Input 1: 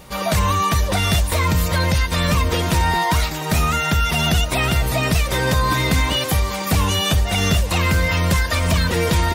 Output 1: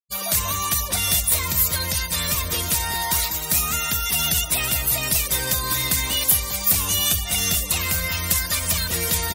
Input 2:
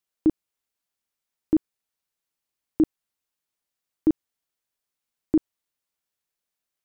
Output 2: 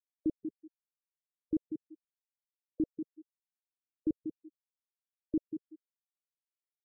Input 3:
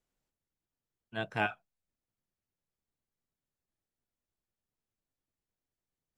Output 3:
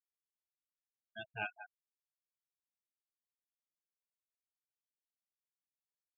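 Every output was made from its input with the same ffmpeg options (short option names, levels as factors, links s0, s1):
-filter_complex "[0:a]crystalizer=i=5.5:c=0,asplit=2[s0][s1];[s1]adelay=189,lowpass=f=2100:p=1,volume=0.422,asplit=2[s2][s3];[s3]adelay=189,lowpass=f=2100:p=1,volume=0.22,asplit=2[s4][s5];[s5]adelay=189,lowpass=f=2100:p=1,volume=0.22[s6];[s2][s4][s6]amix=inputs=3:normalize=0[s7];[s0][s7]amix=inputs=2:normalize=0,afftfilt=real='re*gte(hypot(re,im),0.0794)':imag='im*gte(hypot(re,im),0.0794)':win_size=1024:overlap=0.75,highshelf=f=9300:g=7,volume=0.251"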